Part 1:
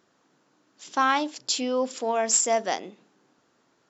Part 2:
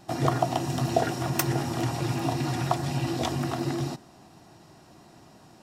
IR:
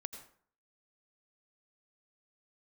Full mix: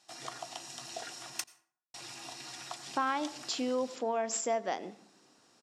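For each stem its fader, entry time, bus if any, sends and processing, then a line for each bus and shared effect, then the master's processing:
−3.5 dB, 2.00 s, send −9 dB, high-shelf EQ 4,100 Hz −12 dB
−18.0 dB, 0.00 s, muted 0:01.44–0:01.94, send −8 dB, meter weighting curve ITU-R 468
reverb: on, RT60 0.55 s, pre-delay 77 ms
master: downward compressor 2 to 1, threshold −32 dBFS, peak gain reduction 7.5 dB

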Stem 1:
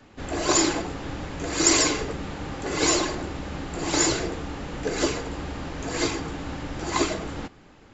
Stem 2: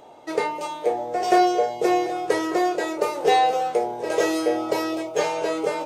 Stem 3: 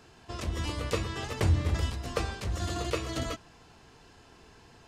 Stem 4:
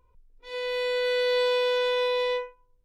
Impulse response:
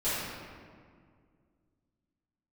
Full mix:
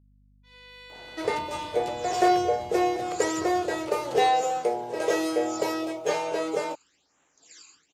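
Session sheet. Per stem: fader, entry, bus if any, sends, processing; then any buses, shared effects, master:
−9.5 dB, 1.55 s, no send, first difference; all-pass phaser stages 12, 1.1 Hz, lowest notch 580–4,700 Hz; amplitude modulation by smooth noise, depth 60%
−3.5 dB, 0.90 s, no send, no processing
−0.5 dB, 0.95 s, no send, downward compressor, threshold −38 dBFS, peak gain reduction 17 dB; high-pass filter 100 Hz 24 dB per octave
−13.0 dB, 0.00 s, no send, high-pass filter 1,100 Hz 12 dB per octave; downward expander −59 dBFS; mains hum 50 Hz, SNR 12 dB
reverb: not used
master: no processing

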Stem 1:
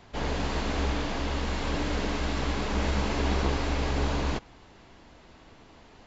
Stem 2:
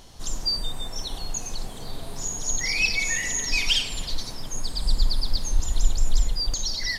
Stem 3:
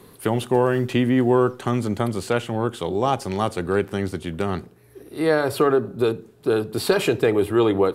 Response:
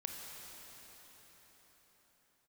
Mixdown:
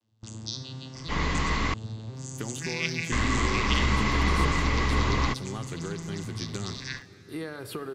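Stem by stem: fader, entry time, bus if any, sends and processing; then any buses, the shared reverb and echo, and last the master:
+2.5 dB, 0.95 s, muted 0:01.74–0:03.12, no send, no echo send, hollow resonant body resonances 1,100/2,000 Hz, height 13 dB, ringing for 20 ms
−6.5 dB, 0.00 s, send −12.5 dB, echo send −12 dB, vocoder with an arpeggio as carrier minor triad, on A2, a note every 519 ms; noise gate with hold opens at −29 dBFS
−8.0 dB, 2.15 s, send −7 dB, no echo send, downward compressor 5 to 1, threshold −24 dBFS, peak gain reduction 10.5 dB; noise gate −38 dBFS, range −18 dB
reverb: on, pre-delay 22 ms
echo: single-tap delay 73 ms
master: parametric band 660 Hz −9 dB 1.3 octaves

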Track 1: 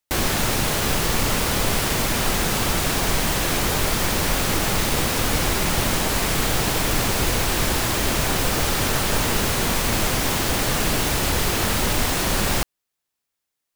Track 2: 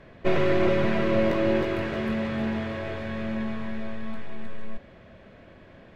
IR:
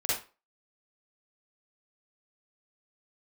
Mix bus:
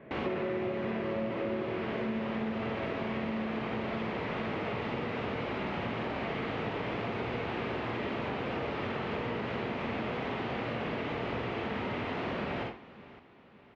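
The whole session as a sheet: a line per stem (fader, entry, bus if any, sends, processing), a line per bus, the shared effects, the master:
−13.0 dB, 0.00 s, send −4 dB, echo send −15.5 dB, no processing
−4.5 dB, 0.00 s, send −8 dB, no echo send, no processing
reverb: on, RT60 0.30 s, pre-delay 40 ms
echo: repeating echo 562 ms, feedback 49%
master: loudspeaker in its box 120–2,700 Hz, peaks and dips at 230 Hz +5 dB, 420 Hz +4 dB, 1,600 Hz −4 dB; downward compressor 6 to 1, threshold −31 dBFS, peak gain reduction 13 dB

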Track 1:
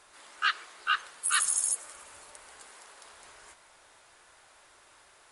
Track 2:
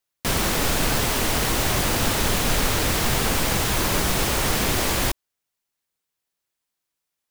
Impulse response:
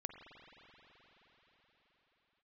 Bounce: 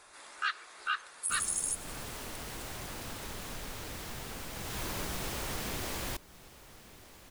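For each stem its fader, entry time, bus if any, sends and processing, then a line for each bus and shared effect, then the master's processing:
+1.5 dB, 0.00 s, no send, no echo send, notch filter 3,000 Hz
0:04.53 −18.5 dB → 0:04.81 −10.5 dB, 1.05 s, no send, echo send −21.5 dB, no processing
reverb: not used
echo: single-tap delay 1,194 ms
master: downward compressor 1.5 to 1, threshold −41 dBFS, peak gain reduction 7.5 dB

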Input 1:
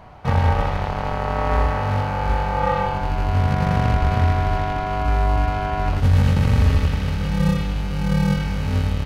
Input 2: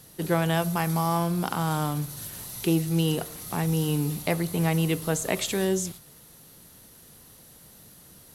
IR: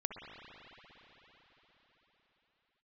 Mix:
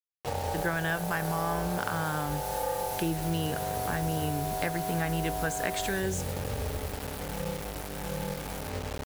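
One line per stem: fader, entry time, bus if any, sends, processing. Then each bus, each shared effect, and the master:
−17.0 dB, 0.00 s, no send, flat-topped bell 510 Hz +13 dB
−2.0 dB, 0.35 s, no send, parametric band 1,600 Hz +14 dB 0.43 octaves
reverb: not used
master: bit-depth reduction 6 bits, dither none; downward compressor 2 to 1, threshold −30 dBFS, peak gain reduction 7 dB

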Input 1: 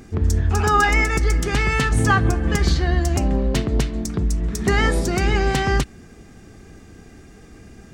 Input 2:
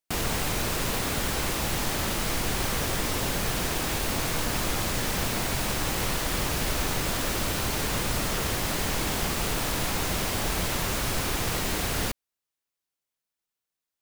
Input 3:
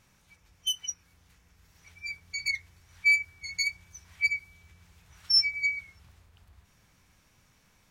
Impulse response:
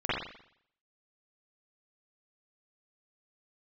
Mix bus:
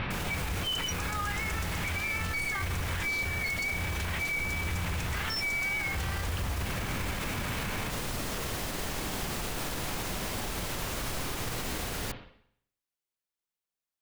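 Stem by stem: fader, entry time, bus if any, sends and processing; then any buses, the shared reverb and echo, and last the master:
−7.0 dB, 0.45 s, bus A, no send, Butterworth high-pass 830 Hz
−6.5 dB, 0.00 s, no bus, send −17 dB, no processing
−4.5 dB, 0.00 s, bus A, no send, inverse Chebyshev low-pass filter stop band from 6,400 Hz, stop band 40 dB; envelope flattener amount 100%
bus A: 0.0 dB, brickwall limiter −18 dBFS, peak gain reduction 6.5 dB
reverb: on, RT60 0.65 s, pre-delay 43 ms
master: brickwall limiter −24 dBFS, peak gain reduction 9.5 dB

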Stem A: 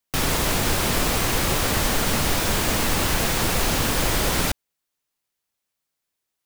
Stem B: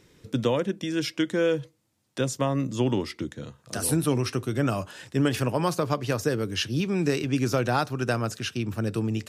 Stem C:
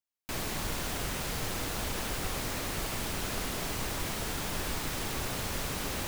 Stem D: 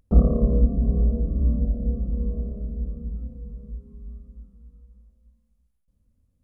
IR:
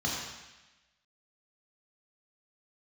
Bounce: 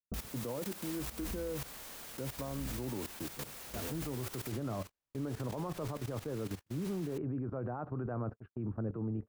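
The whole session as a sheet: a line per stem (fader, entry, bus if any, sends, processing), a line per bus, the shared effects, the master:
−13.0 dB, 0.00 s, no send, high-pass filter 430 Hz 6 dB per octave; high-shelf EQ 8,900 Hz +9 dB
+1.5 dB, 0.00 s, no send, low-pass filter 1,200 Hz 24 dB per octave
−5.5 dB, 1.10 s, no send, low-shelf EQ 410 Hz −7.5 dB
+2.5 dB, 0.00 s, no send, downward compressor 8 to 1, threshold −28 dBFS, peak gain reduction 19 dB; tremolo with a sine in dB 0.76 Hz, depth 32 dB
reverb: not used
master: noise gate −31 dBFS, range −52 dB; output level in coarse steps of 16 dB; brickwall limiter −30 dBFS, peak gain reduction 9 dB

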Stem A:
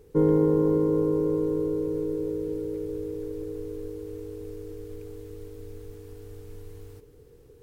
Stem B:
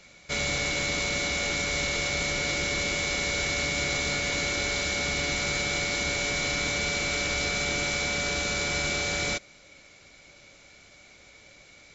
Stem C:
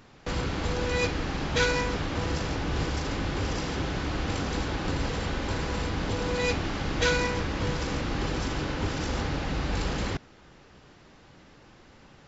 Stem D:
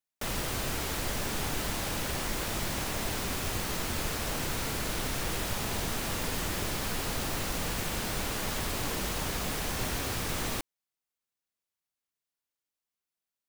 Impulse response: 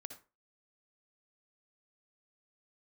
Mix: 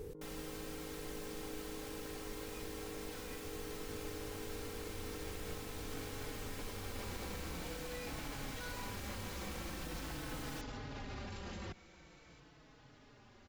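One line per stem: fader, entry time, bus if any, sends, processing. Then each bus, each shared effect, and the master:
+1.5 dB, 0.00 s, bus A, no send, downward compressor, threshold −33 dBFS, peak gain reduction 15 dB
−20.0 dB, 0.45 s, bus A, no send, hard clipping −33.5 dBFS, distortion −6 dB
−10.5 dB, 1.55 s, bus A, no send, barber-pole flanger 4.2 ms −0.45 Hz
−17.0 dB, 0.00 s, no bus, no send, comb filter 3.8 ms, depth 62%
bus A: 0.0 dB, compressor whose output falls as the input rises −44 dBFS, ratio −1; brickwall limiter −37 dBFS, peak gain reduction 9.5 dB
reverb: not used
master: no processing

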